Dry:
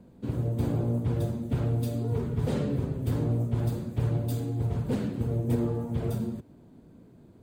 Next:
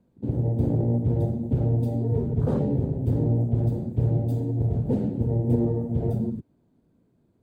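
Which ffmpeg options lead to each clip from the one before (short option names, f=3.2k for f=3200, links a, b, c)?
-af "afwtdn=0.0178,volume=4.5dB"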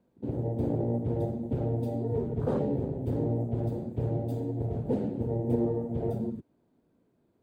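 -af "bass=f=250:g=-9,treble=f=4k:g=-4"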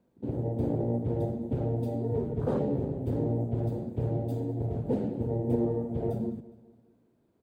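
-af "aecho=1:1:206|412|618|824:0.106|0.0487|0.0224|0.0103"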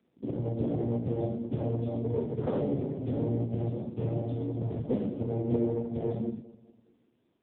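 -af "crystalizer=i=5.5:c=0" -ar 8000 -c:a libopencore_amrnb -b:a 5900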